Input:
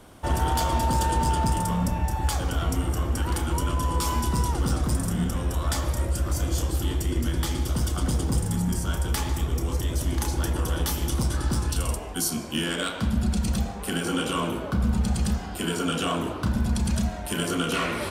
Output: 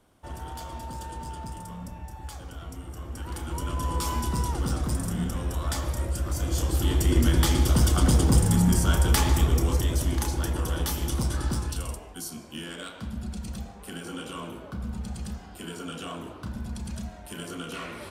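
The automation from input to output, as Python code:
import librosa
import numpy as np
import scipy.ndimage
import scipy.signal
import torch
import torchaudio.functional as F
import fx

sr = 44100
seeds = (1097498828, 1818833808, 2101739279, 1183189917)

y = fx.gain(x, sr, db=fx.line((2.85, -14.0), (3.87, -3.0), (6.35, -3.0), (7.16, 5.0), (9.41, 5.0), (10.39, -2.0), (11.46, -2.0), (12.2, -10.5)))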